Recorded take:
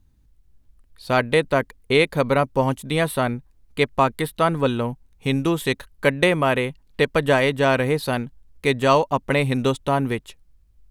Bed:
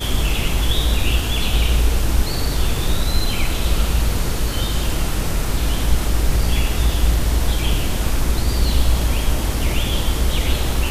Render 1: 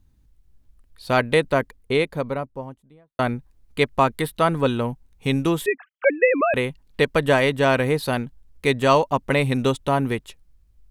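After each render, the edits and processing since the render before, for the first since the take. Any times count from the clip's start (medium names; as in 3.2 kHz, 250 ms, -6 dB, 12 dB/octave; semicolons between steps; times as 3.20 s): 1.35–3.19 s: studio fade out; 5.66–6.54 s: formants replaced by sine waves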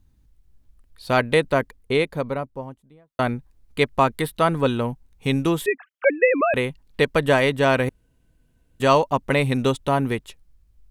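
7.89–8.80 s: room tone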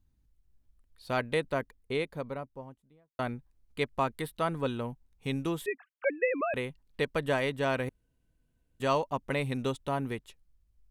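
trim -11 dB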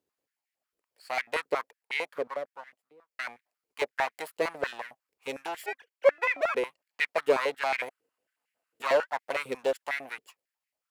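comb filter that takes the minimum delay 0.41 ms; step-sequenced high-pass 11 Hz 440–2000 Hz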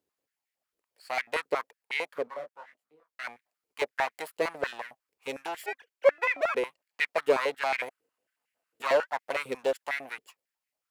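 2.25–3.23 s: detune thickener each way 38 cents -> 53 cents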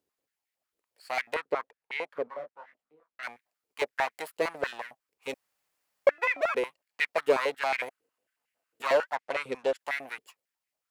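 1.34–3.23 s: low-pass 2 kHz 6 dB/octave; 5.34–6.07 s: room tone; 9.15–9.79 s: distance through air 50 m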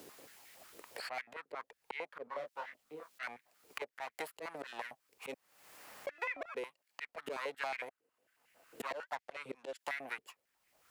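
slow attack 434 ms; three bands compressed up and down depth 100%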